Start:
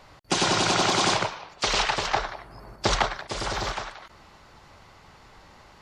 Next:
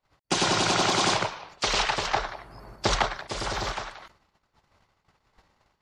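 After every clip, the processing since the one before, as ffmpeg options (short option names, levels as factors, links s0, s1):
-af "agate=range=0.0282:threshold=0.00398:ratio=16:detection=peak,volume=0.891"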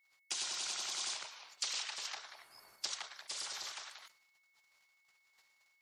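-af "acompressor=threshold=0.0224:ratio=4,aderivative,aeval=exprs='val(0)+0.0002*sin(2*PI*2200*n/s)':c=same,volume=1.33"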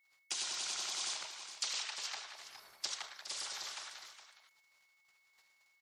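-af "aecho=1:1:76|414:0.188|0.282"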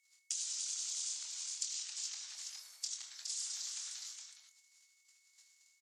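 -filter_complex "[0:a]acompressor=threshold=0.00447:ratio=6,bandpass=f=7200:t=q:w=2.4:csg=0,asplit=2[s0][s1];[s1]adelay=24,volume=0.473[s2];[s0][s2]amix=inputs=2:normalize=0,volume=4.73"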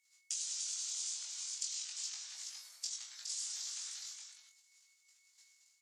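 -af "flanger=delay=18:depth=2.6:speed=0.35,volume=1.41"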